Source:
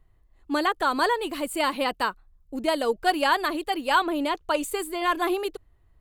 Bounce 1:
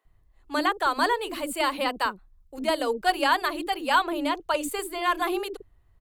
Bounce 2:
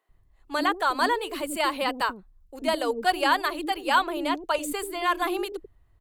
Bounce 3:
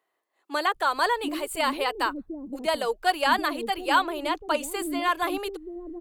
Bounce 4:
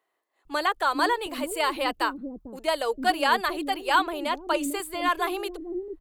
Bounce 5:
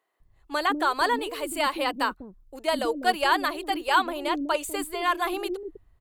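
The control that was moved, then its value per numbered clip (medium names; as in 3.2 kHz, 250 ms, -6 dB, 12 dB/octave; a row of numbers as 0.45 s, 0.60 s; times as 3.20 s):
bands offset in time, time: 50 ms, 90 ms, 740 ms, 450 ms, 200 ms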